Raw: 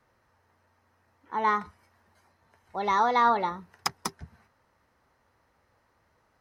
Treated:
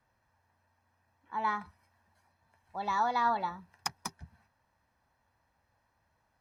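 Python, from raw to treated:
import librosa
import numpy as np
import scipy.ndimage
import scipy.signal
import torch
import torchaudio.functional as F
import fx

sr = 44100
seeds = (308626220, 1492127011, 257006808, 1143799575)

y = x + 0.5 * np.pad(x, (int(1.2 * sr / 1000.0), 0))[:len(x)]
y = F.gain(torch.from_numpy(y), -7.5).numpy()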